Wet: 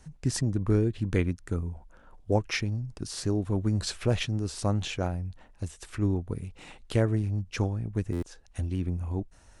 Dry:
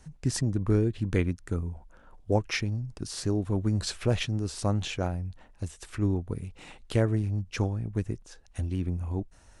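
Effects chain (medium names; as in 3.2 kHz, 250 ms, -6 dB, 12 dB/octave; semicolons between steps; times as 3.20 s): buffer glitch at 8.12 s, samples 512, times 8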